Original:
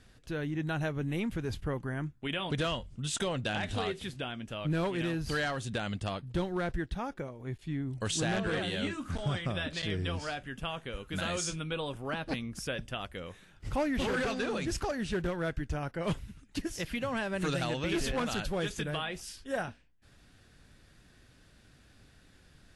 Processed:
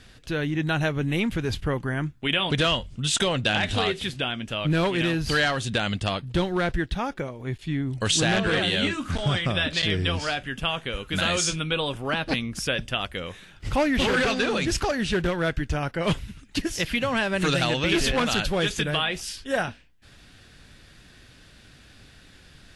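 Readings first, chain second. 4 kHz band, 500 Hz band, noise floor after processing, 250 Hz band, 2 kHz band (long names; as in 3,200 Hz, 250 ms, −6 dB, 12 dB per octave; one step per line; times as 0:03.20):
+12.5 dB, +8.0 dB, −52 dBFS, +7.5 dB, +10.5 dB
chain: parametric band 3,200 Hz +5.5 dB 1.8 octaves
level +7.5 dB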